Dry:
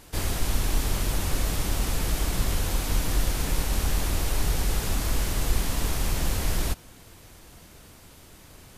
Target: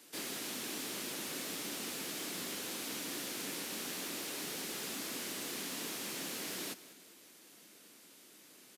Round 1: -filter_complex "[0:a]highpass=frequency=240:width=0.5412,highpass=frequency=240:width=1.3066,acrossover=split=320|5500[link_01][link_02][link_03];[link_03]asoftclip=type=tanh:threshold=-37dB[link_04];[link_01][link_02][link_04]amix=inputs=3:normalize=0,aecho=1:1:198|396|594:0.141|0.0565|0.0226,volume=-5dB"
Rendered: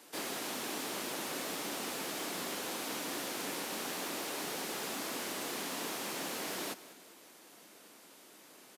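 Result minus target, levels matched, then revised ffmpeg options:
1,000 Hz band +6.0 dB
-filter_complex "[0:a]highpass=frequency=240:width=0.5412,highpass=frequency=240:width=1.3066,equalizer=frequency=820:width_type=o:width=1.8:gain=-9,acrossover=split=320|5500[link_01][link_02][link_03];[link_03]asoftclip=type=tanh:threshold=-37dB[link_04];[link_01][link_02][link_04]amix=inputs=3:normalize=0,aecho=1:1:198|396|594:0.141|0.0565|0.0226,volume=-5dB"

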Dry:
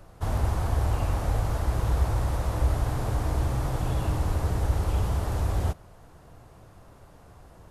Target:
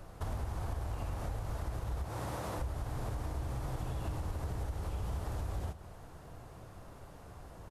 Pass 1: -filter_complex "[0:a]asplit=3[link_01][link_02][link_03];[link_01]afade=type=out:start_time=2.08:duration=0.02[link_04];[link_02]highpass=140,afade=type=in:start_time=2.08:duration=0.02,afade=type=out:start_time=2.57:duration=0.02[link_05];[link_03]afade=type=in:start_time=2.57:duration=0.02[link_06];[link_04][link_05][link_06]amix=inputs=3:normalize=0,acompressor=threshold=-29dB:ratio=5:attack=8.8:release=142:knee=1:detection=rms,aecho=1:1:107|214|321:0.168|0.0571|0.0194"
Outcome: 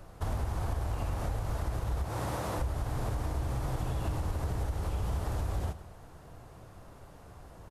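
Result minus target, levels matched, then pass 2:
downward compressor: peak gain reduction −5 dB
-filter_complex "[0:a]asplit=3[link_01][link_02][link_03];[link_01]afade=type=out:start_time=2.08:duration=0.02[link_04];[link_02]highpass=140,afade=type=in:start_time=2.08:duration=0.02,afade=type=out:start_time=2.57:duration=0.02[link_05];[link_03]afade=type=in:start_time=2.57:duration=0.02[link_06];[link_04][link_05][link_06]amix=inputs=3:normalize=0,acompressor=threshold=-35dB:ratio=5:attack=8.8:release=142:knee=1:detection=rms,aecho=1:1:107|214|321:0.168|0.0571|0.0194"

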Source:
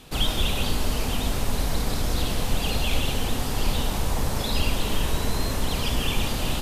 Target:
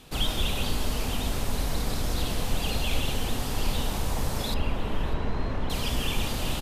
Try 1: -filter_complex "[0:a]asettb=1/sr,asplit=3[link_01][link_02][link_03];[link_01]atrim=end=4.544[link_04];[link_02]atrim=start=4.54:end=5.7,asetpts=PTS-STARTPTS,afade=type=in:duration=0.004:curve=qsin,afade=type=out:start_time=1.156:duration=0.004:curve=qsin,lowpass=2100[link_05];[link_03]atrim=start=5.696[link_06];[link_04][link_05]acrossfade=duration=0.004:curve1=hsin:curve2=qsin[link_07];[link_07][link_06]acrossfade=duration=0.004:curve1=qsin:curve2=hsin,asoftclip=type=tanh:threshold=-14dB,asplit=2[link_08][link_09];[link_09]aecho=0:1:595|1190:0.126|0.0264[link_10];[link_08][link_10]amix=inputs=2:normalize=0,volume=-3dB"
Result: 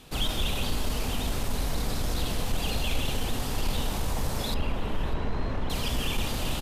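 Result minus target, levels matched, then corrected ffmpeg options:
soft clipping: distortion +20 dB
-filter_complex "[0:a]asettb=1/sr,asplit=3[link_01][link_02][link_03];[link_01]atrim=end=4.544[link_04];[link_02]atrim=start=4.54:end=5.7,asetpts=PTS-STARTPTS,afade=type=in:duration=0.004:curve=qsin,afade=type=out:start_time=1.156:duration=0.004:curve=qsin,lowpass=2100[link_05];[link_03]atrim=start=5.696[link_06];[link_04][link_05]acrossfade=duration=0.004:curve1=hsin:curve2=qsin[link_07];[link_07][link_06]acrossfade=duration=0.004:curve1=qsin:curve2=hsin,asoftclip=type=tanh:threshold=-3dB,asplit=2[link_08][link_09];[link_09]aecho=0:1:595|1190:0.126|0.0264[link_10];[link_08][link_10]amix=inputs=2:normalize=0,volume=-3dB"

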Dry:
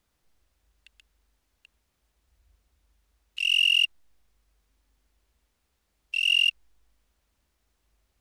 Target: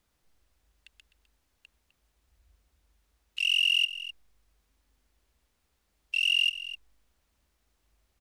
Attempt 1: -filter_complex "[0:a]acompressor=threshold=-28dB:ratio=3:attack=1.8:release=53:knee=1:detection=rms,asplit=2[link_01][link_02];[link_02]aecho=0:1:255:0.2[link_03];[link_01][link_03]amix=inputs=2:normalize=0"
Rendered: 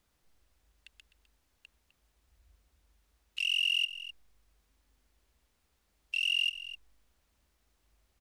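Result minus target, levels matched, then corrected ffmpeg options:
downward compressor: peak gain reduction +4.5 dB
-filter_complex "[0:a]acompressor=threshold=-21dB:ratio=3:attack=1.8:release=53:knee=1:detection=rms,asplit=2[link_01][link_02];[link_02]aecho=0:1:255:0.2[link_03];[link_01][link_03]amix=inputs=2:normalize=0"

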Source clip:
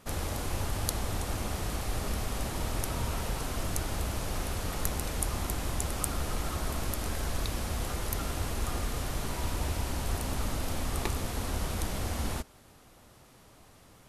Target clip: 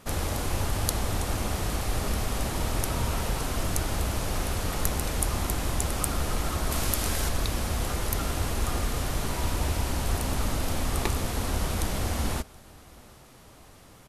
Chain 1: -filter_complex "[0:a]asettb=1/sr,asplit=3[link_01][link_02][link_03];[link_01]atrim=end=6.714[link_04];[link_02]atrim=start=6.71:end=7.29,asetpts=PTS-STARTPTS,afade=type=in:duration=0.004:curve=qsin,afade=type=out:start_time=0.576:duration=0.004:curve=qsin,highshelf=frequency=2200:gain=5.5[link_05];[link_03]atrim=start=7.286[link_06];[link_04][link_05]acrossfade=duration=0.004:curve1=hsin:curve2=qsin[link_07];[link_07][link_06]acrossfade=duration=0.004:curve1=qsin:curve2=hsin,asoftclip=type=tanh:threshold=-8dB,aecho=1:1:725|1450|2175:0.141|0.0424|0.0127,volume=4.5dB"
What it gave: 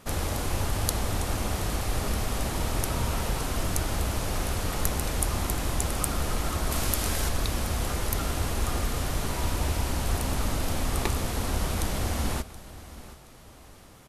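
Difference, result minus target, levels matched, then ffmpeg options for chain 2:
echo-to-direct +9.5 dB
-filter_complex "[0:a]asettb=1/sr,asplit=3[link_01][link_02][link_03];[link_01]atrim=end=6.714[link_04];[link_02]atrim=start=6.71:end=7.29,asetpts=PTS-STARTPTS,afade=type=in:duration=0.004:curve=qsin,afade=type=out:start_time=0.576:duration=0.004:curve=qsin,highshelf=frequency=2200:gain=5.5[link_05];[link_03]atrim=start=7.286[link_06];[link_04][link_05]acrossfade=duration=0.004:curve1=hsin:curve2=qsin[link_07];[link_07][link_06]acrossfade=duration=0.004:curve1=qsin:curve2=hsin,asoftclip=type=tanh:threshold=-8dB,aecho=1:1:725|1450:0.0473|0.0142,volume=4.5dB"

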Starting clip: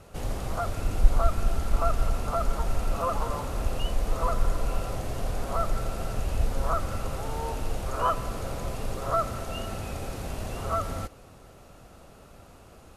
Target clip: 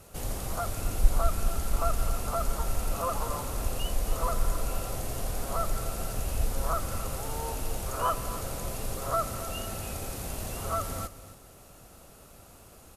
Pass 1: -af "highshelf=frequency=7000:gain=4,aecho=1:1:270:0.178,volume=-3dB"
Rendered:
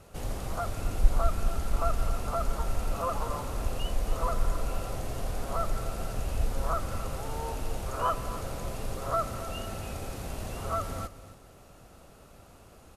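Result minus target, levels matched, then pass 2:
8,000 Hz band −6.0 dB
-af "highshelf=frequency=7000:gain=16,aecho=1:1:270:0.178,volume=-3dB"

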